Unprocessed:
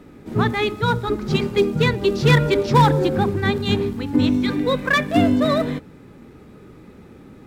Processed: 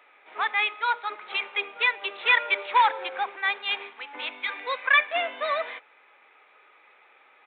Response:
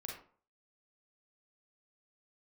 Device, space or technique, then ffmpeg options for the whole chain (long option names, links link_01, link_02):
musical greeting card: -af "aresample=8000,aresample=44100,highpass=frequency=720:width=0.5412,highpass=frequency=720:width=1.3066,equalizer=frequency=2300:width_type=o:width=0.41:gain=8,volume=-2.5dB"